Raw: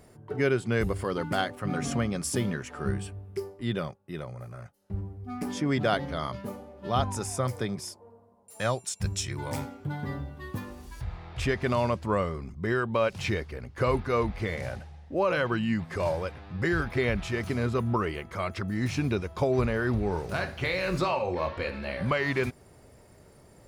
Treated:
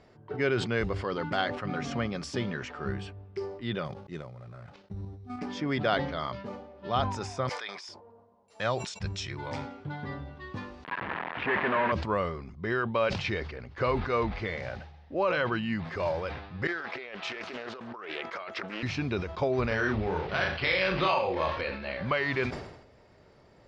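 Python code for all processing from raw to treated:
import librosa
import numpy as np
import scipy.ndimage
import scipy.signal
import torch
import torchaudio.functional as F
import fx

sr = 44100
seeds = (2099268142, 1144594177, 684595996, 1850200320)

y = fx.chain(x, sr, fx.level_steps(step_db=9),
    fx.peak_eq(hz=130.0, db=5.0, octaves=2.8),
    fx.sample_hold(seeds[0], rate_hz=9600.0, jitter_pct=0), at=(3.85, 5.39))
y = fx.chain(y, sr, fx.highpass(hz=1100.0, slope=12),
    fx.sustainer(db_per_s=27.0), at=(7.49, 7.89))
y = fx.chain(y, sr, fx.quant_companded(bits=2),
    fx.cabinet(low_hz=210.0, low_slope=12, high_hz=2600.0, hz=(210.0, 1000.0, 1700.0), db=(3, 6, 7)), at=(10.84, 11.92))
y = fx.chain(y, sr, fx.highpass(hz=410.0, slope=12),
    fx.over_compress(threshold_db=-38.0, ratio=-1.0),
    fx.doppler_dist(depth_ms=0.39), at=(16.67, 18.83))
y = fx.chain(y, sr, fx.high_shelf(hz=2200.0, db=10.5),
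    fx.doubler(ms=37.0, db=-4.0),
    fx.resample_linear(factor=6), at=(19.67, 21.61))
y = scipy.signal.sosfilt(scipy.signal.butter(4, 5000.0, 'lowpass', fs=sr, output='sos'), y)
y = fx.low_shelf(y, sr, hz=360.0, db=-6.0)
y = fx.sustainer(y, sr, db_per_s=67.0)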